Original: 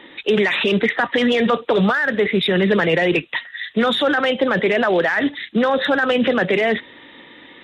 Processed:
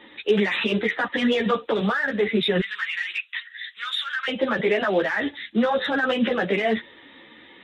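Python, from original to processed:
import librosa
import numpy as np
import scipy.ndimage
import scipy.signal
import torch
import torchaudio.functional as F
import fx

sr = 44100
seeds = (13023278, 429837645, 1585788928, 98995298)

y = fx.cheby2_highpass(x, sr, hz=690.0, order=4, stop_db=40, at=(2.6, 4.28))
y = fx.ensemble(y, sr)
y = y * librosa.db_to_amplitude(-2.0)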